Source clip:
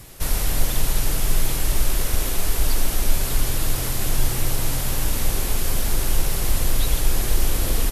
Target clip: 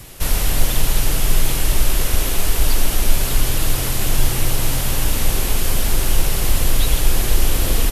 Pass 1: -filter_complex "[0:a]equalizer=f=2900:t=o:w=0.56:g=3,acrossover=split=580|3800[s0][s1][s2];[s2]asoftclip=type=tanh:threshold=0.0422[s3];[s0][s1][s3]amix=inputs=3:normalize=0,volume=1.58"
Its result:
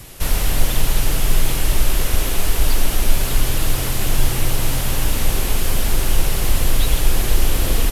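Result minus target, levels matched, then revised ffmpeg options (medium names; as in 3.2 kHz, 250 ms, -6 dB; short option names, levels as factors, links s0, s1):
saturation: distortion +14 dB
-filter_complex "[0:a]equalizer=f=2900:t=o:w=0.56:g=3,acrossover=split=580|3800[s0][s1][s2];[s2]asoftclip=type=tanh:threshold=0.126[s3];[s0][s1][s3]amix=inputs=3:normalize=0,volume=1.58"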